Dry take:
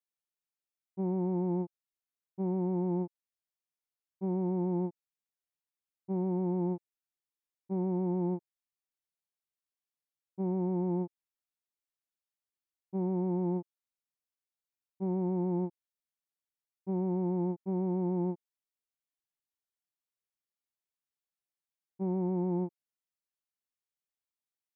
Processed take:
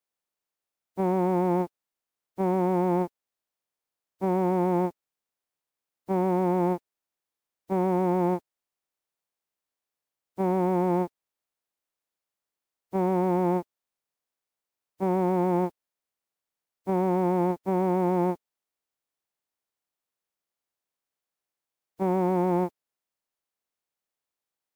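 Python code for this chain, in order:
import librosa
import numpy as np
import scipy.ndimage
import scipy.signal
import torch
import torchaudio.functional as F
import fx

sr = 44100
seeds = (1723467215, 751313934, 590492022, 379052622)

y = fx.spec_flatten(x, sr, power=0.6)
y = fx.peak_eq(y, sr, hz=650.0, db=6.5, octaves=2.5)
y = F.gain(torch.from_numpy(y), 3.0).numpy()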